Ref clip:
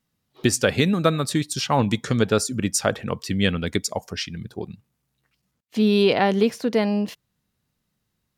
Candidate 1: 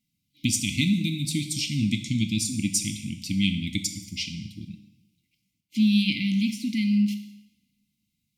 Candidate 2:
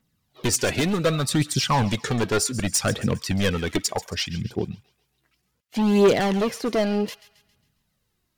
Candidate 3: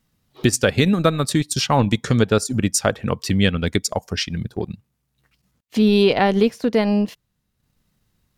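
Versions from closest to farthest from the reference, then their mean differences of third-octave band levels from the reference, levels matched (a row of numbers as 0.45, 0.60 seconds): 3, 2, 1; 2.0, 5.5, 11.5 decibels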